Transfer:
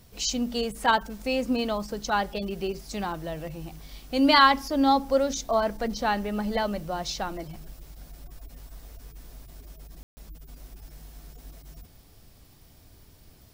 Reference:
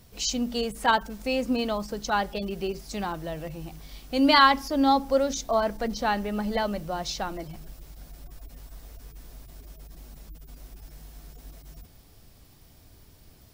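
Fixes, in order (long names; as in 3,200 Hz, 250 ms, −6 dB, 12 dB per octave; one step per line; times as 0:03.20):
ambience match 0:10.03–0:10.17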